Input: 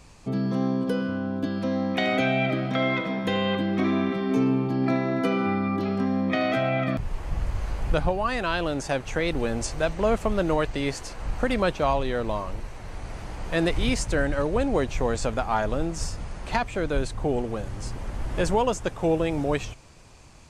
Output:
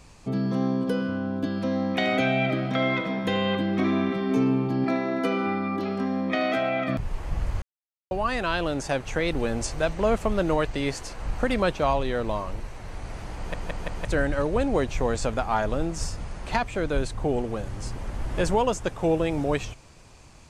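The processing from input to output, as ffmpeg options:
-filter_complex "[0:a]asettb=1/sr,asplit=3[a][b][c];[a]atrim=end=4.844[d];[b]atrim=start=4.84:end=6.89,asetpts=PTS-STARTPTS,afade=t=in:d=0.004:c=qsin,afade=t=out:st=2.046:d=0.004:c=qsin,equalizer=f=120:t=o:w=0.77:g=-13.5[e];[c]atrim=start=6.886[f];[d][e]acrossfade=d=0.004:c1=hsin:c2=qsin[g];[g][f]acrossfade=d=0.004:c1=qsin:c2=hsin,asplit=7[h][i][j][k][l][m][n];[h]atrim=end=7.62,asetpts=PTS-STARTPTS,afade=t=out:st=7.616:d=0.004:c=hsin[o];[i]atrim=start=7.62:end=8.11,asetpts=PTS-STARTPTS,volume=0[p];[j]atrim=start=8.11:end=13.542,asetpts=PTS-STARTPTS,afade=t=in:d=0.004:c=hsin[q];[k]atrim=start=13.368:end=13.542[r];[l]atrim=start=13.368:end=13.542[s];[m]atrim=start=13.368:end=13.542[t];[n]atrim=start=14.048[u];[o][p][q]concat=n=3:v=0:a=1[v];[v][r]acrossfade=d=0.004:c1=hsin:c2=hsin[w];[w][s]acrossfade=d=0.004:c1=hsin:c2=hsin[x];[x][t]acrossfade=d=0.004:c1=hsin:c2=hsin[y];[y][u]acrossfade=d=0.004:c1=hsin:c2=hsin"

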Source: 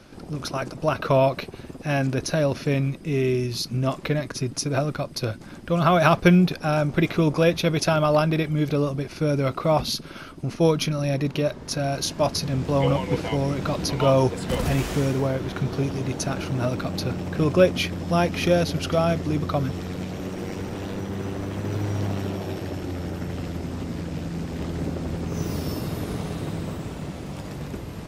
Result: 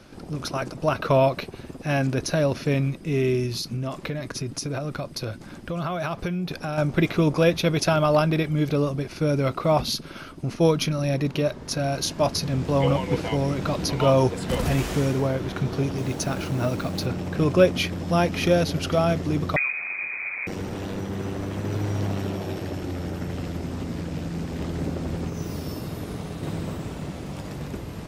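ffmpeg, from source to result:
-filter_complex "[0:a]asettb=1/sr,asplit=3[a][b][c];[a]atrim=end=3.504[d];[b]atrim=start=3.5:end=6.78,asetpts=PTS-STARTPTS,afade=t=in:d=0.004:c=qsin,afade=t=out:st=3.276:d=0.004:c=qsin,acompressor=threshold=-25dB:ratio=6:attack=3.2:release=140:knee=1:detection=peak[e];[c]atrim=start=6.776[f];[d][e]acrossfade=d=0.004:c1=hsin:c2=qsin[g];[g][f]acrossfade=d=0.004:c1=qsin:c2=hsin,asettb=1/sr,asplit=3[h][i][j];[h]atrim=end=15.984[k];[i]atrim=start=15.98:end=17.06,asetpts=PTS-STARTPTS,afade=t=in:d=0.004:c=qsin,afade=t=out:st=1.076:d=0.004:c=qsin,acrusher=bits=6:mix=0:aa=0.5[l];[j]atrim=start=17.056[m];[k][l]acrossfade=d=0.004:c1=hsin:c2=qsin[n];[n][m]acrossfade=d=0.004:c1=qsin:c2=hsin,asettb=1/sr,asplit=3[o][p][q];[o]atrim=end=19.564[r];[p]atrim=start=19.56:end=20.47,asetpts=PTS-STARTPTS,afade=t=in:d=0.004:c=qsin,afade=t=out:st=0.906:d=0.004:c=qsin,lowpass=f=2.2k:t=q:w=0.5098,lowpass=f=2.2k:t=q:w=0.6013,lowpass=f=2.2k:t=q:w=0.9,lowpass=f=2.2k:t=q:w=2.563,afreqshift=-2600[s];[q]atrim=start=20.466[t];[r][s]acrossfade=d=0.004:c1=hsin:c2=qsin[u];[u][t]acrossfade=d=0.004:c1=qsin:c2=hsin,asplit=3[v][w][x];[v]atrim=end=25.302[y];[w]atrim=start=25.298:end=26.432,asetpts=PTS-STARTPTS,volume=-3.5dB[z];[x]atrim=start=26.428[aa];[y][z]acrossfade=d=0.004:c1=hsin:c2=hsin[ab];[ab][aa]acrossfade=d=0.004:c1=hsin:c2=hsin"

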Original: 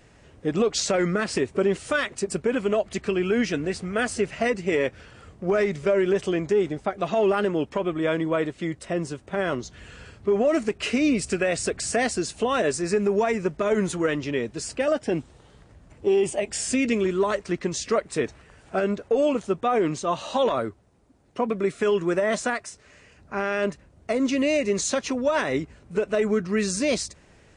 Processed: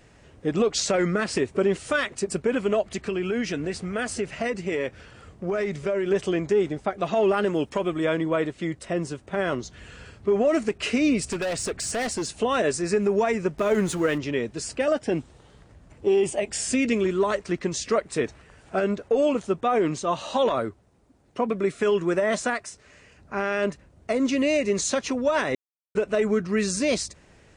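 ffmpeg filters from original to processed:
-filter_complex "[0:a]asettb=1/sr,asplit=3[a][b][c];[a]atrim=end=2.944[d];[b]atrim=start=2.94:end=6.11,asetpts=PTS-STARTPTS,afade=t=in:d=0.004:c=qsin,afade=t=out:st=3.166:d=0.004:c=qsin,acompressor=threshold=-25dB:ratio=2:attack=3.2:release=140:knee=1:detection=peak[e];[c]atrim=start=6.106[f];[d][e]acrossfade=d=0.004:c1=hsin:c2=qsin[g];[g][f]acrossfade=d=0.004:c1=qsin:c2=hsin,asettb=1/sr,asplit=3[h][i][j];[h]atrim=end=7.474[k];[i]atrim=start=7.47:end=8.05,asetpts=PTS-STARTPTS,afade=t=in:d=0.004:c=qsin,afade=t=out:st=0.576:d=0.004:c=qsin,highshelf=f=5.7k:g=11[l];[j]atrim=start=8.046[m];[k][l]acrossfade=d=0.004:c1=hsin:c2=qsin[n];[n][m]acrossfade=d=0.004:c1=qsin:c2=hsin,asettb=1/sr,asplit=3[o][p][q];[o]atrim=end=11.234[r];[p]atrim=start=11.23:end=12.3,asetpts=PTS-STARTPTS,afade=t=in:d=0.004:c=qsin,afade=t=out:st=1.066:d=0.004:c=qsin,asoftclip=type=hard:threshold=-24dB[s];[q]atrim=start=12.296[t];[r][s]acrossfade=d=0.004:c1=hsin:c2=qsin[u];[u][t]acrossfade=d=0.004:c1=qsin:c2=hsin,asettb=1/sr,asplit=3[v][w][x];[v]atrim=end=13.584[y];[w]atrim=start=13.58:end=14.18,asetpts=PTS-STARTPTS,afade=t=in:d=0.004:c=qsin,afade=t=out:st=0.596:d=0.004:c=qsin,aeval=exprs='val(0)+0.5*0.0126*sgn(val(0))':c=same[z];[x]atrim=start=14.176[aa];[y][z]acrossfade=d=0.004:c1=hsin:c2=qsin[ab];[ab][aa]acrossfade=d=0.004:c1=qsin:c2=hsin,asplit=3[ac][ad][ae];[ac]atrim=end=25.55,asetpts=PTS-STARTPTS,afade=t=out:st=25.546:d=0.004:c=hsin[af];[ad]atrim=start=25.55:end=25.95,asetpts=PTS-STARTPTS,volume=0[ag];[ae]atrim=start=25.95,asetpts=PTS-STARTPTS,afade=t=in:d=0.004:c=hsin[ah];[af][ag][ah]concat=n=3:v=0:a=1"

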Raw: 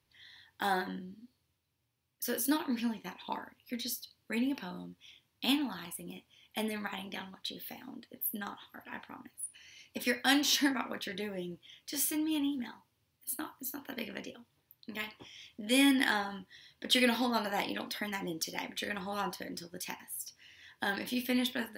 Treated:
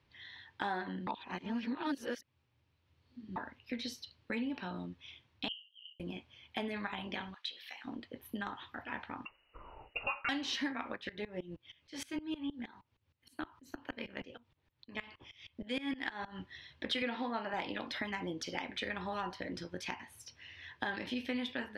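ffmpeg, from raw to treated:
-filter_complex "[0:a]asettb=1/sr,asplit=3[a][b][c];[a]atrim=end=5.484[d];[b]atrim=start=5.48:end=6,asetpts=PTS-STARTPTS,afade=t=in:d=0.004:c=qsin,afade=t=out:st=0.516:d=0.004:c=qsin,asuperpass=centerf=3000:order=12:qfactor=7.2[e];[c]atrim=start=5.996[f];[d][e]acrossfade=d=0.004:c1=hsin:c2=qsin[g];[g][f]acrossfade=d=0.004:c1=qsin:c2=hsin,asplit=3[h][i][j];[h]afade=t=out:st=7.33:d=0.02[k];[i]highpass=1.4k,afade=t=in:st=7.33:d=0.02,afade=t=out:st=7.84:d=0.02[l];[j]afade=t=in:st=7.84:d=0.02[m];[k][l][m]amix=inputs=3:normalize=0,asettb=1/sr,asplit=3[n][o][p];[n]atrim=end=9.254[q];[o]atrim=start=9.25:end=10.29,asetpts=PTS-STARTPTS,afade=t=in:d=0.004:c=qsin,afade=t=out:st=1.036:d=0.004:c=qsin,lowpass=f=2.6k:t=q:w=0.5098,lowpass=f=2.6k:t=q:w=0.6013,lowpass=f=2.6k:t=q:w=0.9,lowpass=f=2.6k:t=q:w=2.563,afreqshift=-3000[r];[p]atrim=start=10.286[s];[q][r]acrossfade=d=0.004:c1=hsin:c2=qsin[t];[t][s]acrossfade=d=0.004:c1=qsin:c2=hsin,asplit=3[u][v][w];[u]afade=t=out:st=10.95:d=0.02[x];[v]aeval=exprs='val(0)*pow(10,-21*if(lt(mod(-6.4*n/s,1),2*abs(-6.4)/1000),1-mod(-6.4*n/s,1)/(2*abs(-6.4)/1000),(mod(-6.4*n/s,1)-2*abs(-6.4)/1000)/(1-2*abs(-6.4)/1000))/20)':c=same,afade=t=in:st=10.95:d=0.02,afade=t=out:st=16.38:d=0.02[y];[w]afade=t=in:st=16.38:d=0.02[z];[x][y][z]amix=inputs=3:normalize=0,asettb=1/sr,asplit=3[aa][ab][ac];[aa]atrim=end=17.024[ad];[ab]atrim=start=17.02:end=17.54,asetpts=PTS-STARTPTS,afade=t=in:d=0.004:c=qsin,afade=t=out:st=0.516:d=0.004:c=qsin,highpass=150,lowpass=3.3k[ae];[ac]atrim=start=17.536[af];[ad][ae]acrossfade=d=0.004:c1=hsin:c2=qsin[ag];[ag][af]acrossfade=d=0.004:c1=qsin:c2=hsin,asplit=3[ah][ai][aj];[ah]atrim=end=1.072[ak];[ai]atrim=start=1.068:end=3.362,asetpts=PTS-STARTPTS,areverse[al];[aj]atrim=start=3.358[am];[ak][al]acrossfade=d=0.004:c1=hsin:c2=hsin[an];[an][am]acrossfade=d=0.004:c1=hsin:c2=hsin,lowpass=3.3k,asubboost=boost=3.5:cutoff=86,acompressor=threshold=-43dB:ratio=3,volume=6dB"

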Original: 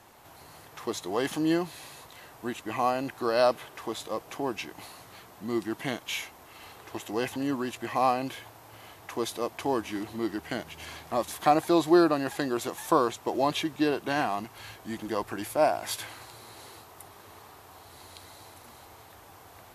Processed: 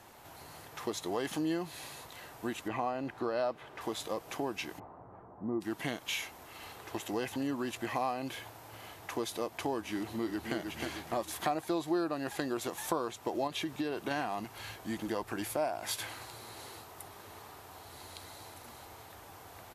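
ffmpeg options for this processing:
-filter_complex "[0:a]asettb=1/sr,asplit=3[a][b][c];[a]atrim=end=2.684[d];[b]atrim=start=2.68:end=3.81,asetpts=PTS-STARTPTS,afade=t=in:d=0.004:c=qsin,afade=t=out:st=1.126:d=0.004:c=qsin,aemphasis=mode=reproduction:type=75kf[e];[c]atrim=start=3.806[f];[d][e]acrossfade=d=0.004:c1=hsin:c2=qsin[g];[g][f]acrossfade=d=0.004:c1=qsin:c2=hsin,asplit=3[h][i][j];[h]afade=t=out:st=4.78:d=0.02[k];[i]lowpass=f=1.1k:w=0.5412,lowpass=f=1.1k:w=1.3066,afade=t=in:st=4.78:d=0.02,afade=t=out:st=5.6:d=0.02[l];[j]afade=t=in:st=5.6:d=0.02[m];[k][l][m]amix=inputs=3:normalize=0,asplit=2[n][o];[o]afade=t=in:st=9.95:d=0.01,afade=t=out:st=10.56:d=0.01,aecho=0:1:310|620|930|1240|1550:0.530884|0.238898|0.107504|0.0483768|0.0217696[p];[n][p]amix=inputs=2:normalize=0,asettb=1/sr,asplit=3[q][r][s];[q]atrim=end=13.474[t];[r]atrim=start=13.47:end=14.11,asetpts=PTS-STARTPTS,afade=t=in:d=0.004:c=qsin,afade=t=out:st=0.636:d=0.004:c=qsin,acompressor=threshold=-27dB:ratio=4:attack=3.2:release=140:knee=1:detection=peak[u];[s]atrim=start=14.106[v];[t][u]acrossfade=d=0.004:c1=hsin:c2=qsin[w];[w][v]acrossfade=d=0.004:c1=qsin:c2=hsin,bandreject=f=1.1k:w=28,acompressor=threshold=-32dB:ratio=3"

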